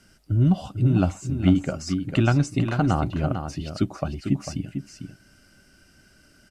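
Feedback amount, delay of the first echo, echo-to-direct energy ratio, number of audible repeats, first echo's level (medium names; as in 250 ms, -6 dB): no regular repeats, 448 ms, -8.0 dB, 1, -8.0 dB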